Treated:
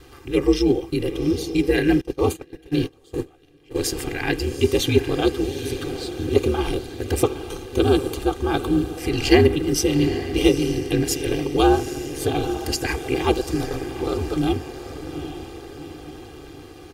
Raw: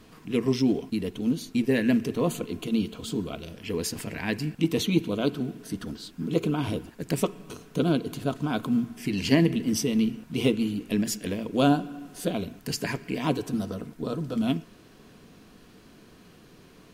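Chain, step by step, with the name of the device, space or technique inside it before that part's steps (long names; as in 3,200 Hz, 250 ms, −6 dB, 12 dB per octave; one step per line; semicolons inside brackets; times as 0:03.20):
feedback delay with all-pass diffusion 810 ms, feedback 56%, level −10.5 dB
0:02.01–0:03.76: noise gate −26 dBFS, range −25 dB
ring-modulated robot voice (ring modulation 72 Hz; comb filter 2.5 ms, depth 99%)
level +6 dB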